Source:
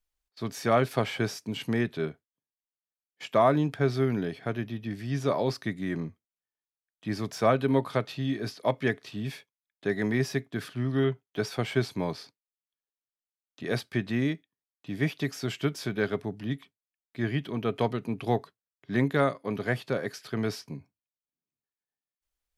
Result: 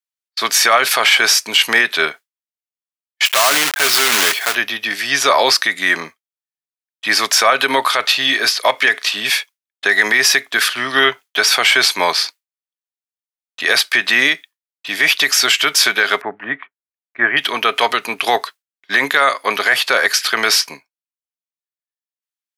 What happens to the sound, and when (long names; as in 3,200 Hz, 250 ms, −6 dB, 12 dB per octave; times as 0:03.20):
0:03.25–0:04.56: one scale factor per block 3 bits
0:16.21–0:17.37: inverse Chebyshev low-pass filter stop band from 6,100 Hz, stop band 60 dB
whole clip: high-pass filter 1,300 Hz 12 dB per octave; downward expander −55 dBFS; boost into a limiter +29.5 dB; level −1 dB